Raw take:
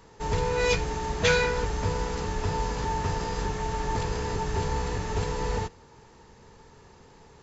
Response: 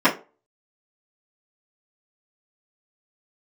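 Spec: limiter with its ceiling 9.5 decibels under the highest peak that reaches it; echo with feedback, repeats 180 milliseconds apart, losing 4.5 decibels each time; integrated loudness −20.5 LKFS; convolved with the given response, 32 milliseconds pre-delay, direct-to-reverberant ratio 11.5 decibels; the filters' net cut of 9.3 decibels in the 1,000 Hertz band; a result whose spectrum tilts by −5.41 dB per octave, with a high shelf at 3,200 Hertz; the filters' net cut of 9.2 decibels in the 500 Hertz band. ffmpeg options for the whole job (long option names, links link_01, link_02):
-filter_complex "[0:a]equalizer=frequency=500:width_type=o:gain=-8.5,equalizer=frequency=1000:width_type=o:gain=-7.5,highshelf=frequency=3200:gain=-7.5,alimiter=limit=-23.5dB:level=0:latency=1,aecho=1:1:180|360|540|720|900|1080|1260|1440|1620:0.596|0.357|0.214|0.129|0.0772|0.0463|0.0278|0.0167|0.01,asplit=2[link_01][link_02];[1:a]atrim=start_sample=2205,adelay=32[link_03];[link_02][link_03]afir=irnorm=-1:irlink=0,volume=-33dB[link_04];[link_01][link_04]amix=inputs=2:normalize=0,volume=12.5dB"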